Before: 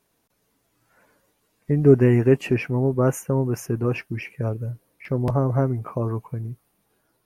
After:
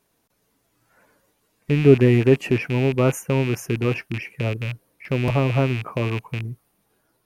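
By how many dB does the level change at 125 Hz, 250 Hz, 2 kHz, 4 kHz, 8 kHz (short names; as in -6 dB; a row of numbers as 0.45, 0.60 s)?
+1.0, +1.0, +6.0, +10.5, +1.5 dB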